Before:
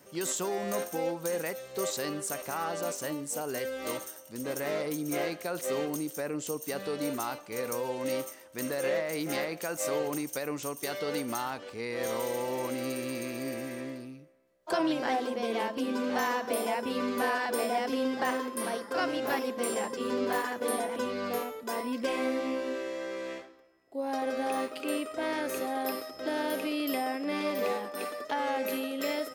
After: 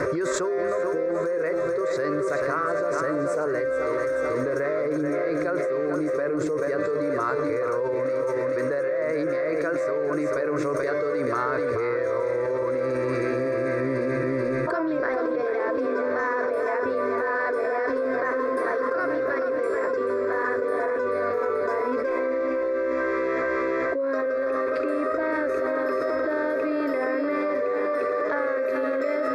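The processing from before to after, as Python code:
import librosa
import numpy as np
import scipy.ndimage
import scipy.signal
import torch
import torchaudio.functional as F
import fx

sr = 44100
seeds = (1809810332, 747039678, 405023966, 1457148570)

p1 = scipy.signal.sosfilt(scipy.signal.butter(2, 2100.0, 'lowpass', fs=sr, output='sos'), x)
p2 = fx.fixed_phaser(p1, sr, hz=810.0, stages=6)
p3 = p2 + fx.echo_feedback(p2, sr, ms=434, feedback_pct=37, wet_db=-8, dry=0)
p4 = fx.env_flatten(p3, sr, amount_pct=100)
y = p4 * 10.0 ** (2.5 / 20.0)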